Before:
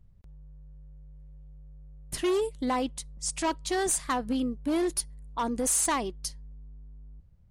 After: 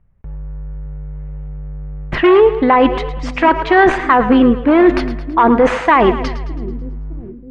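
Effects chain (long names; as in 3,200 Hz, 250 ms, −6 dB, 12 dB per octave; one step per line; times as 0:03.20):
noise gate with hold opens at −47 dBFS
low-pass filter 2,200 Hz 24 dB per octave
low-shelf EQ 470 Hz −11 dB
reversed playback
downward compressor 4 to 1, threshold −39 dBFS, peak gain reduction 10.5 dB
reversed playback
echo with a time of its own for lows and highs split 360 Hz, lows 612 ms, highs 109 ms, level −13 dB
on a send at −20 dB: convolution reverb RT60 0.50 s, pre-delay 6 ms
on the sum: boost into a limiter +33 dB
level −1 dB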